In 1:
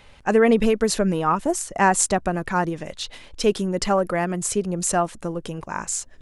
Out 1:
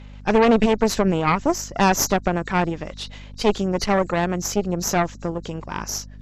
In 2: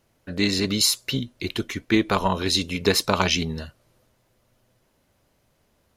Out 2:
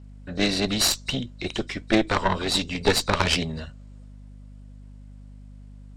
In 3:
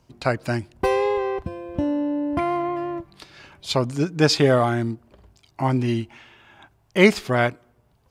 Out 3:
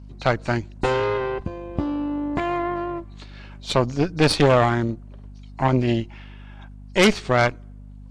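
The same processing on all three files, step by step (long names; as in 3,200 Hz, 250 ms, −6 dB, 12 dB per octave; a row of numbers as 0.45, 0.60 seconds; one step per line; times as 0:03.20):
hearing-aid frequency compression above 3,700 Hz 1.5 to 1
mains hum 50 Hz, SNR 17 dB
harmonic generator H 5 −18 dB, 8 −12 dB, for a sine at −0.5 dBFS
level −4.5 dB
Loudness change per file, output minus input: +0.5, −1.0, +0.5 LU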